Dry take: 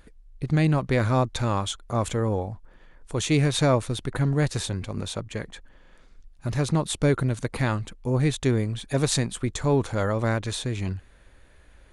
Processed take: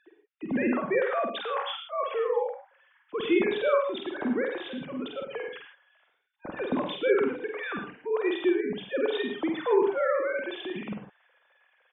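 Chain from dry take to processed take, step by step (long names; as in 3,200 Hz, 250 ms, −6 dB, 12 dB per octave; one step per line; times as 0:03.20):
three sine waves on the formant tracks
double-tracking delay 48 ms −4.5 dB
reverb whose tail is shaped and stops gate 130 ms rising, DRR 5.5 dB
level −6 dB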